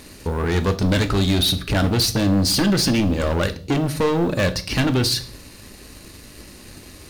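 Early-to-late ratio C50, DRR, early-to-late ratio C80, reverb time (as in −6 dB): 16.0 dB, 9.0 dB, 20.5 dB, 0.45 s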